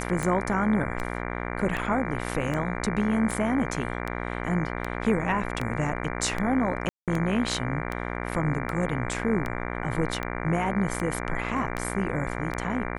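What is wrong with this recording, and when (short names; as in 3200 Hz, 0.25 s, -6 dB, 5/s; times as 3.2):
buzz 60 Hz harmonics 39 -32 dBFS
tick 78 rpm
6.89–7.08 gap 0.187 s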